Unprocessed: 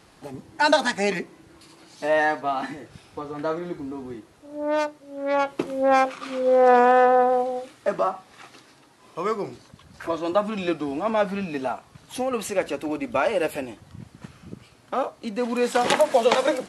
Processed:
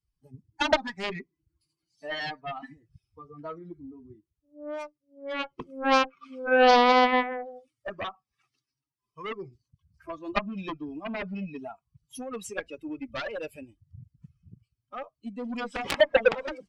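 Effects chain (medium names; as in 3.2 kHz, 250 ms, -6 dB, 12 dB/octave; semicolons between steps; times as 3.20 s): expander on every frequency bin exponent 2; low-pass that closes with the level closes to 1.3 kHz, closed at -20 dBFS; Chebyshev shaper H 3 -24 dB, 5 -27 dB, 7 -11 dB, 8 -36 dB, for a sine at -9 dBFS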